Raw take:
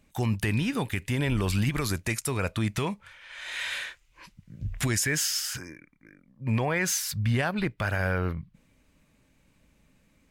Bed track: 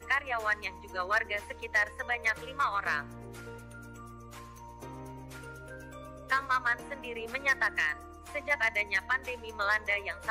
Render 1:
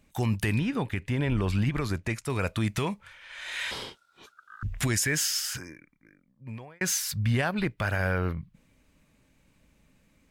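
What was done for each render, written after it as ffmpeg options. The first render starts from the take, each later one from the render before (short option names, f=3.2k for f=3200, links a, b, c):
-filter_complex "[0:a]asettb=1/sr,asplit=3[a][b][c];[a]atrim=end=0.594[d];[b]atrim=start=0.59:end=2.3,asetpts=PTS-STARTPTS,afade=t=in:d=0.004:c=qsin,afade=t=out:st=1.706:d=0.004:c=qsin,lowpass=f=2.2k:p=1[e];[c]atrim=start=2.296[f];[d][e]acrossfade=d=0.004:c1=hsin:c2=qsin[g];[g][f]acrossfade=d=0.004:c1=qsin:c2=hsin,asettb=1/sr,asplit=3[h][i][j];[h]atrim=end=3.714[k];[i]atrim=start=3.71:end=4.63,asetpts=PTS-STARTPTS,afade=t=in:d=0.004:c=qsin,afade=t=out:st=0.916:d=0.004:c=qsin,aeval=exprs='val(0)*sin(2*PI*1400*n/s)':c=same[l];[j]atrim=start=4.626[m];[k][l]acrossfade=d=0.004:c1=hsin:c2=qsin[n];[n][m]acrossfade=d=0.004:c1=qsin:c2=hsin,asplit=2[o][p];[o]atrim=end=6.81,asetpts=PTS-STARTPTS,afade=t=out:st=5.54:d=1.27[q];[p]atrim=start=6.81,asetpts=PTS-STARTPTS,afade=t=in:d=0.004:c=hsin[r];[q][r]concat=n=2:v=0:a=1"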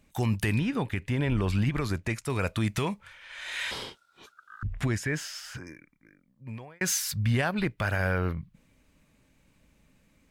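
-filter_complex "[0:a]asettb=1/sr,asplit=3[a][b][c];[a]atrim=end=4.634[d];[b]atrim=start=4.63:end=5.67,asetpts=PTS-STARTPTS,afade=t=in:d=0.004:c=qsin,afade=t=out:st=1.036:d=0.004:c=qsin,lowpass=f=1.5k:p=1[e];[c]atrim=start=5.666[f];[d][e]acrossfade=d=0.004:c1=hsin:c2=qsin[g];[g][f]acrossfade=d=0.004:c1=qsin:c2=hsin"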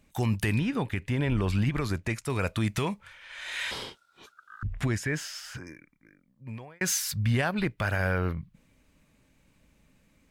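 -af anull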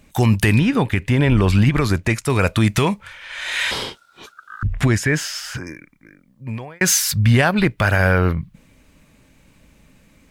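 -af "volume=11.5dB"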